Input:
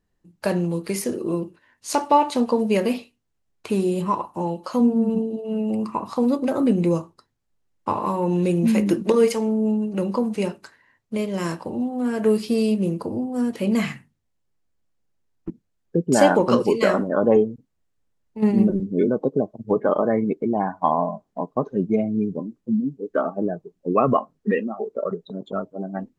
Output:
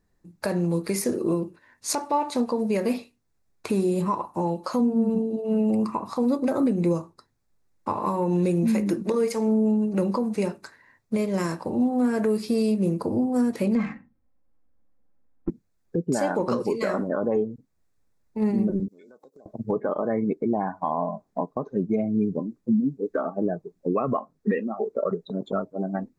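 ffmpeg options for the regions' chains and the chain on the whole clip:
-filter_complex "[0:a]asettb=1/sr,asplit=3[s0][s1][s2];[s0]atrim=end=13.754[s3];[s1]atrim=start=13.75:end=15.49,asetpts=PTS-STARTPTS,afade=t=in:d=0.004:c=qsin,afade=t=out:st=1.736:d=0.004:c=qsin,lowpass=9900,aecho=1:1:3.8:0.96,atrim=end_sample=76734,adynamicsmooth=sensitivity=0.5:basefreq=1600[s4];[s2]atrim=start=15.486[s5];[s3][s4]acrossfade=d=0.004:c1=hsin:c2=qsin[s6];[s6][s5]acrossfade=d=0.004:c1=qsin:c2=hsin,asettb=1/sr,asplit=3[s7][s8][s9];[s7]atrim=end=18.884[s10];[s8]atrim=start=18.88:end=19.46,asetpts=PTS-STARTPTS,afade=t=in:d=0.004:c=qsin,afade=t=out:st=0.576:d=0.004:c=qsin,aderivative,acompressor=threshold=0.00282:ratio=5:attack=3.2:release=140:knee=1:detection=peak[s11];[s9]atrim=start=19.456[s12];[s10][s11]acrossfade=d=0.004:c1=hsin:c2=qsin[s13];[s13][s12]acrossfade=d=0.004:c1=qsin:c2=hsin,equalizer=f=3000:t=o:w=0.24:g=-11.5,alimiter=limit=0.119:level=0:latency=1:release=436,volume=1.5"

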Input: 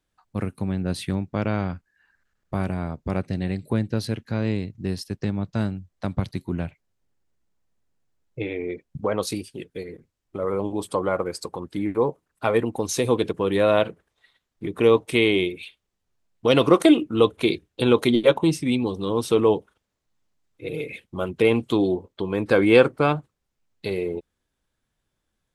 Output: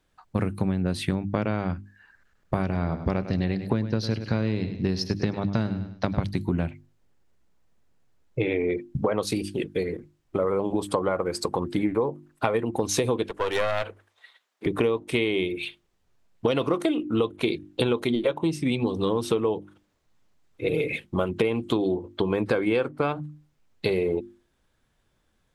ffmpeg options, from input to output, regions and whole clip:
-filter_complex "[0:a]asettb=1/sr,asplit=3[s0][s1][s2];[s0]atrim=end=2.624[s3];[s1]atrim=start=2.62:end=6.23,asetpts=PTS-STARTPTS,afade=t=in:d=0.004:c=qsin,afade=t=out:st=3.606:d=0.004:c=qsin,highshelf=f=6800:t=q:w=3:g=-7,aecho=1:1:101|202|303:0.211|0.0655|0.0203,atrim=end_sample=159201[s4];[s2]atrim=start=6.226[s5];[s3][s4]acrossfade=d=0.004:c1=hsin:c2=qsin[s6];[s6][s5]acrossfade=d=0.004:c1=qsin:c2=hsin,asettb=1/sr,asplit=3[s7][s8][s9];[s7]atrim=end=13.234[s10];[s8]atrim=start=13.23:end=14.66,asetpts=PTS-STARTPTS,afade=t=in:d=0.004:c=qsin,afade=t=out:st=1.426:d=0.004:c=qsin,highpass=610,aeval=exprs='clip(val(0),-1,0.0224)':c=same[s11];[s9]atrim=start=14.656[s12];[s10][s11]acrossfade=d=0.004:c1=hsin:c2=qsin[s13];[s13][s12]acrossfade=d=0.004:c1=qsin:c2=hsin,highshelf=f=4800:g=-6,bandreject=f=50:t=h:w=6,bandreject=f=100:t=h:w=6,bandreject=f=150:t=h:w=6,bandreject=f=200:t=h:w=6,bandreject=f=250:t=h:w=6,bandreject=f=300:t=h:w=6,bandreject=f=350:t=h:w=6,acompressor=threshold=0.0355:ratio=12,volume=2.66"

